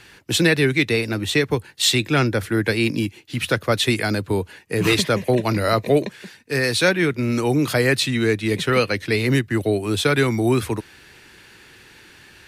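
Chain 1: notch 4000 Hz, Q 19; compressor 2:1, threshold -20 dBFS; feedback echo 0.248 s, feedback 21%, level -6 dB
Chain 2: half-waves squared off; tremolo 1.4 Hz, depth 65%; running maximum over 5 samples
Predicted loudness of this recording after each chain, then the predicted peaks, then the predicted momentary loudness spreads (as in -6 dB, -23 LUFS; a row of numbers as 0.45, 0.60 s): -22.0, -19.0 LUFS; -7.0, -3.5 dBFS; 6, 8 LU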